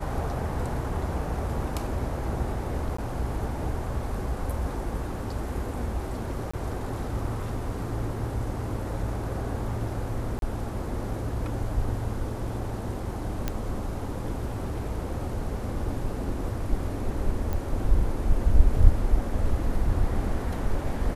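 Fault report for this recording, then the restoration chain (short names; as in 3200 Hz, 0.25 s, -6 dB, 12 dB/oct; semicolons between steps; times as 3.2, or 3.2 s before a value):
2.97–2.98 gap 14 ms
6.51–6.54 gap 25 ms
10.39–10.42 gap 32 ms
13.48 pop -13 dBFS
17.53 pop -18 dBFS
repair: de-click; interpolate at 2.97, 14 ms; interpolate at 6.51, 25 ms; interpolate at 10.39, 32 ms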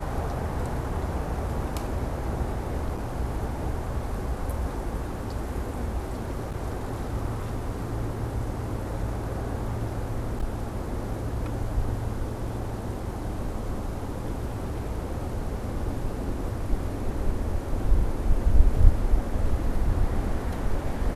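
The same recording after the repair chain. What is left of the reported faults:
none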